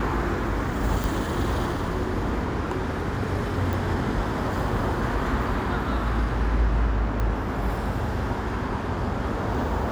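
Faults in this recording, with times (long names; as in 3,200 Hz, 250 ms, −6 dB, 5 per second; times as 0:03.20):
0:01.04: click
0:03.73: click
0:07.20: click −16 dBFS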